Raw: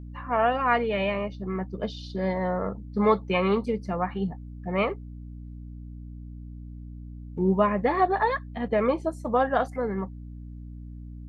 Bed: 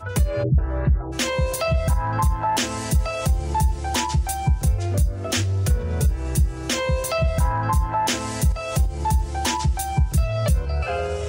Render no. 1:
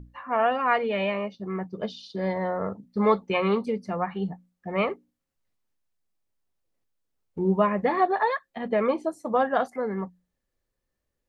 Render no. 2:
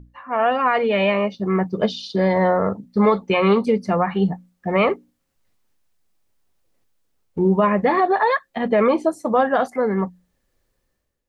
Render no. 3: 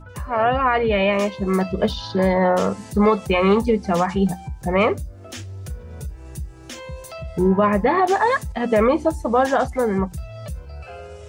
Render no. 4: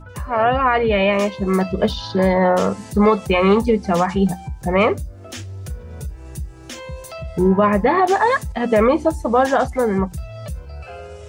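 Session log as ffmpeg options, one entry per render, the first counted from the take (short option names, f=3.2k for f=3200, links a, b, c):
-af "bandreject=f=60:t=h:w=6,bandreject=f=120:t=h:w=6,bandreject=f=180:t=h:w=6,bandreject=f=240:t=h:w=6,bandreject=f=300:t=h:w=6"
-af "dynaudnorm=f=130:g=7:m=11.5dB,alimiter=limit=-8.5dB:level=0:latency=1:release=38"
-filter_complex "[1:a]volume=-12dB[a];[0:a][a]amix=inputs=2:normalize=0"
-af "volume=2dB"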